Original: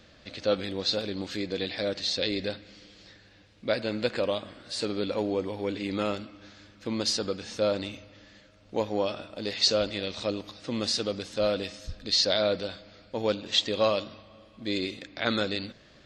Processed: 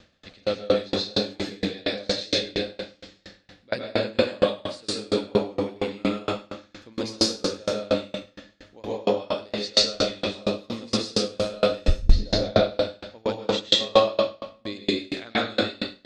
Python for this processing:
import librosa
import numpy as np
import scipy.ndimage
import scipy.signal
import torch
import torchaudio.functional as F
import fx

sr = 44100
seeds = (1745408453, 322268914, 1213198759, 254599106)

y = fx.tilt_eq(x, sr, slope=-4.5, at=(11.88, 12.42))
y = fx.echo_feedback(y, sr, ms=103, feedback_pct=31, wet_db=-6)
y = fx.rev_plate(y, sr, seeds[0], rt60_s=0.77, hf_ratio=0.85, predelay_ms=115, drr_db=-7.0)
y = fx.tremolo_decay(y, sr, direction='decaying', hz=4.3, depth_db=31)
y = y * librosa.db_to_amplitude(3.5)